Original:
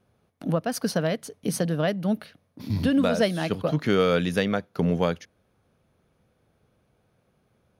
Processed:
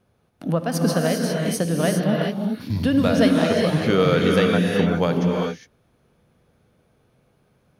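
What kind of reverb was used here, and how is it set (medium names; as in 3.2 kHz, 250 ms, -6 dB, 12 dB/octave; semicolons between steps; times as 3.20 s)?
gated-style reverb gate 430 ms rising, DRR 0 dB; trim +2 dB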